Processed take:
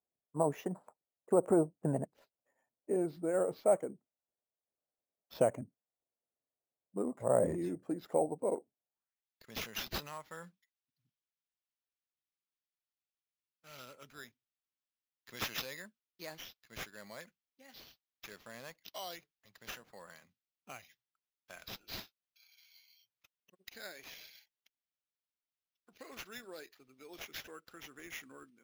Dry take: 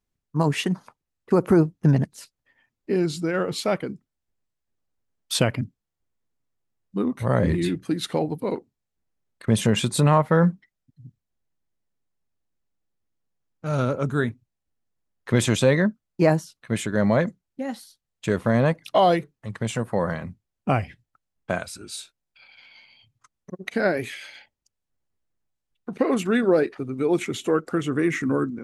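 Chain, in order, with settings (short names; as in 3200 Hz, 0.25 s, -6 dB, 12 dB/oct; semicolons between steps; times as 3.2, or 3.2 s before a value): band-pass sweep 630 Hz -> 5600 Hz, 8.87–9.37; sample-and-hold 5×; low shelf 400 Hz +5.5 dB; gain -3.5 dB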